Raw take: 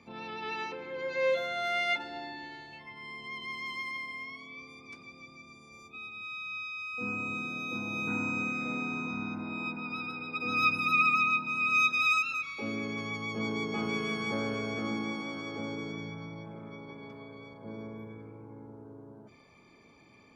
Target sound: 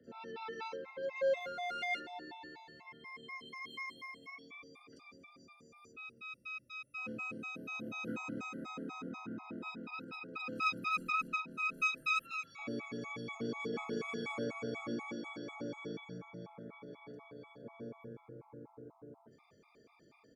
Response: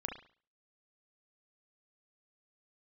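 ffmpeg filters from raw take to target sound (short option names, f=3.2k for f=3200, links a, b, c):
-filter_complex "[0:a]equalizer=f=450:w=3.4:g=4.5,bandreject=f=50:t=h:w=6,bandreject=f=100:t=h:w=6,bandreject=f=150:t=h:w=6,bandreject=f=200:t=h:w=6,bandreject=f=250:t=h:w=6,acrossover=split=2900[a][b];[b]adelay=40[c];[a][c]amix=inputs=2:normalize=0,afreqshift=15,asplit=2[d][e];[e]asoftclip=type=tanh:threshold=-30dB,volume=-10dB[f];[d][f]amix=inputs=2:normalize=0,afftfilt=real='re*gt(sin(2*PI*4.1*pts/sr)*(1-2*mod(floor(b*sr/1024/680),2)),0)':imag='im*gt(sin(2*PI*4.1*pts/sr)*(1-2*mod(floor(b*sr/1024/680),2)),0)':win_size=1024:overlap=0.75,volume=-6dB"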